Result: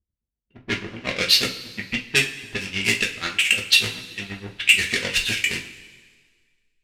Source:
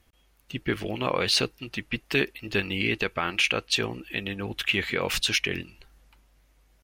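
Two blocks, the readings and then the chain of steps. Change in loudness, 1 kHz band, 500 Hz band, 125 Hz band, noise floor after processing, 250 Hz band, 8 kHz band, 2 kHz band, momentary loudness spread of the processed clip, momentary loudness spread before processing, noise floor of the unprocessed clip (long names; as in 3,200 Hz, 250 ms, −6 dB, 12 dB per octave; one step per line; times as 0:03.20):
+6.5 dB, −4.0 dB, −3.5 dB, −0.5 dB, −85 dBFS, −2.0 dB, +7.5 dB, +6.5 dB, 15 LU, 9 LU, −64 dBFS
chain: each half-wave held at its own peak
low-pass filter 9,400 Hz 12 dB per octave
noise gate −50 dBFS, range −13 dB
high shelf with overshoot 1,500 Hz +10.5 dB, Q 1.5
low-pass that shuts in the quiet parts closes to 320 Hz, open at −10.5 dBFS
in parallel at −7.5 dB: slack as between gear wheels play −26.5 dBFS
on the sum: amplitude tremolo 8.3 Hz, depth 95%
coupled-rooms reverb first 0.26 s, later 1.7 s, from −18 dB, DRR −0.5 dB
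level −9.5 dB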